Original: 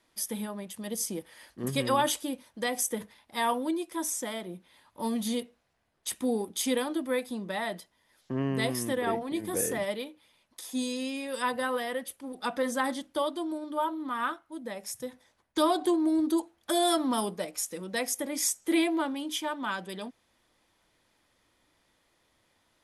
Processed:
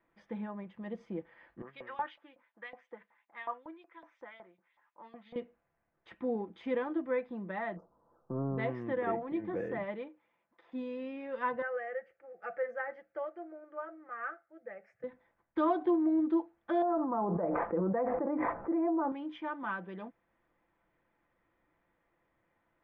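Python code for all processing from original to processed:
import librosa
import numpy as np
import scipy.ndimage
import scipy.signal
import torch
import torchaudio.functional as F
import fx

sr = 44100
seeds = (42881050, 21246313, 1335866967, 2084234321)

y = fx.chain(x, sr, fx.filter_lfo_bandpass(shape='saw_up', hz=5.4, low_hz=780.0, high_hz=4900.0, q=1.6),
    fx.dynamic_eq(hz=860.0, q=0.7, threshold_db=-45.0, ratio=4.0, max_db=-3), at=(1.62, 5.36))
y = fx.chain(y, sr, fx.law_mismatch(coded='mu'),
    fx.cheby1_bandstop(low_hz=1300.0, high_hz=5800.0, order=4),
    fx.peak_eq(hz=470.0, db=5.5, octaves=0.24), at=(7.76, 8.58))
y = fx.chain(y, sr, fx.highpass(hz=280.0, slope=6),
    fx.high_shelf(hz=3400.0, db=-8.5), at=(10.08, 10.72))
y = fx.chain(y, sr, fx.highpass(hz=320.0, slope=6),
    fx.fixed_phaser(hz=990.0, stages=6), at=(11.62, 15.04))
y = fx.chain(y, sr, fx.lowpass(hz=1100.0, slope=24),
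    fx.low_shelf(hz=440.0, db=-8.0),
    fx.env_flatten(amount_pct=100), at=(16.82, 19.12))
y = scipy.signal.sosfilt(scipy.signal.butter(4, 2100.0, 'lowpass', fs=sr, output='sos'), y)
y = y + 0.33 * np.pad(y, (int(5.9 * sr / 1000.0), 0))[:len(y)]
y = F.gain(torch.from_numpy(y), -4.5).numpy()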